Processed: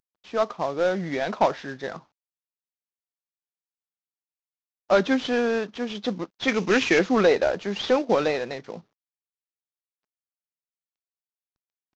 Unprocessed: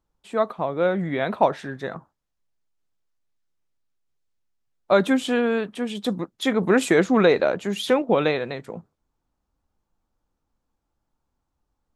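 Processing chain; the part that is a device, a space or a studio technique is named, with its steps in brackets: early wireless headset (HPF 220 Hz 6 dB/oct; CVSD 32 kbps); 6.48–6.99 fifteen-band EQ 630 Hz -5 dB, 2500 Hz +10 dB, 6300 Hz +9 dB

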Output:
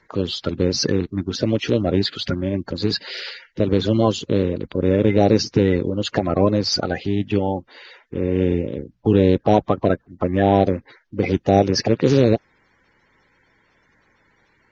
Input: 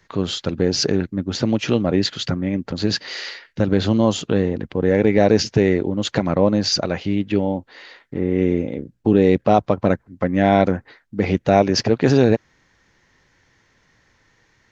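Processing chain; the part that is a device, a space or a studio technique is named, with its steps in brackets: clip after many re-uploads (LPF 6400 Hz 24 dB/oct; bin magnitudes rounded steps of 30 dB)

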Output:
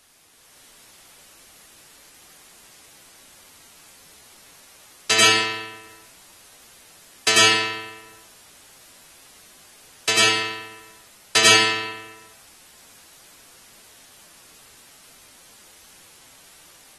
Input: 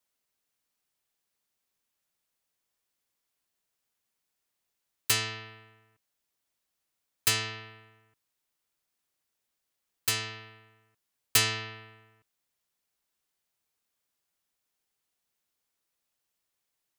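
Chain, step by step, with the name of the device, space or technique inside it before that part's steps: filmed off a television (BPF 250–7200 Hz; bell 570 Hz +7 dB 0.59 oct; reverb RT60 0.50 s, pre-delay 88 ms, DRR -5.5 dB; white noise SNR 21 dB; AGC gain up to 7 dB; AAC 32 kbps 44100 Hz)

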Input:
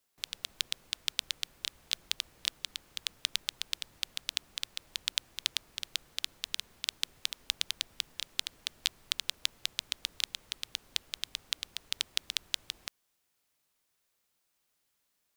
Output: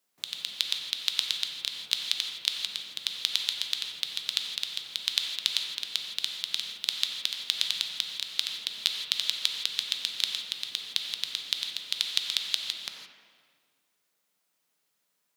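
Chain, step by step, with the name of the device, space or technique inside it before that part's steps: HPF 130 Hz 24 dB/oct; filtered reverb send (on a send at -5 dB: HPF 190 Hz + LPF 3100 Hz 12 dB/oct + reverb RT60 1.8 s, pre-delay 42 ms); on the sum: dynamic EQ 4000 Hz, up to +7 dB, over -51 dBFS, Q 2.1; non-linear reverb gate 0.19 s flat, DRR 5 dB

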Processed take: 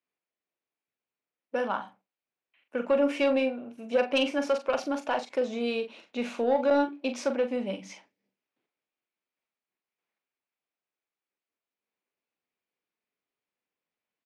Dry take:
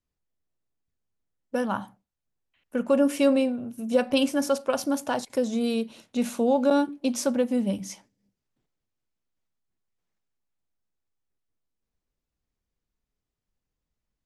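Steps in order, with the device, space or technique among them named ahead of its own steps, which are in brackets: intercom (BPF 360–3600 Hz; bell 2400 Hz +6.5 dB 0.41 oct; soft clip -15.5 dBFS, distortion -20 dB; doubler 42 ms -8.5 dB)

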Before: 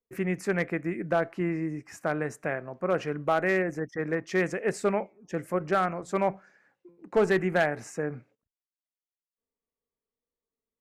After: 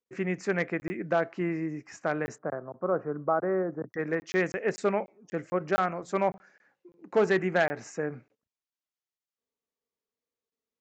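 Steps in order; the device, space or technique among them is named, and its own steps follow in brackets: call with lost packets (HPF 150 Hz 6 dB/oct; downsampling 16000 Hz; packet loss packets of 20 ms random); 2.38–3.93 elliptic band-pass 110–1300 Hz, stop band 40 dB

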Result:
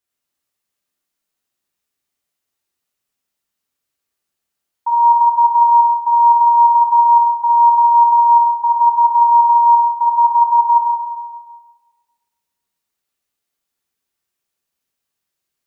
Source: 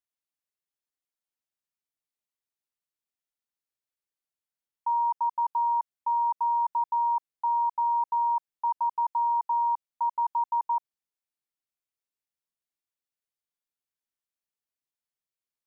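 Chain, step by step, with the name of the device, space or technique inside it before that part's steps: non-linear reverb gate 0.48 s falling, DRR -5.5 dB; compressed reverb return (on a send at -9 dB: reverb RT60 1.6 s, pre-delay 0.105 s + compressor, threshold -20 dBFS, peak gain reduction 7.5 dB); on the sum: gain +6.5 dB

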